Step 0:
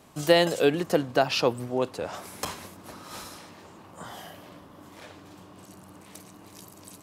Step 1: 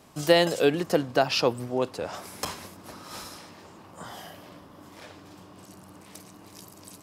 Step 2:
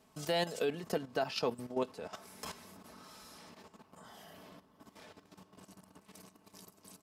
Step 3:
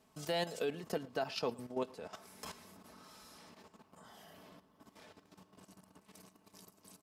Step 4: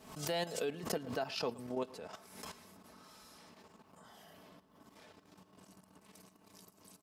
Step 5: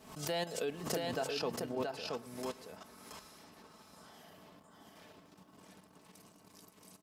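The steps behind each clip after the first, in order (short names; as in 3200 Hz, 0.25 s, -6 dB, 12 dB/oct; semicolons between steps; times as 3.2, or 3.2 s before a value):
bell 5100 Hz +4 dB 0.25 oct
comb 4.6 ms, depth 47%; level quantiser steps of 12 dB; gain -6.5 dB
echo 0.113 s -23 dB; gain -3 dB
backwards sustainer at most 86 dB/s; gain -1 dB
echo 0.676 s -3.5 dB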